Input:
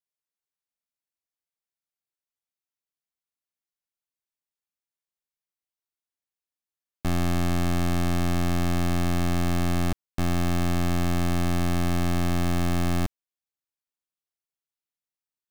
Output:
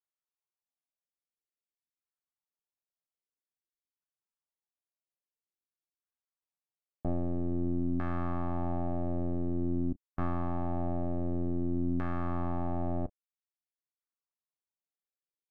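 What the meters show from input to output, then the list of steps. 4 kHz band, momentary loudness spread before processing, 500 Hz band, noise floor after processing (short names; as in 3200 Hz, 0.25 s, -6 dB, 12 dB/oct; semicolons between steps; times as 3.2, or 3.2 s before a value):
under -30 dB, 3 LU, -5.0 dB, under -85 dBFS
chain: doubler 31 ms -11.5 dB; reverb removal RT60 0.7 s; LFO low-pass saw down 0.5 Hz 270–1500 Hz; gain -7 dB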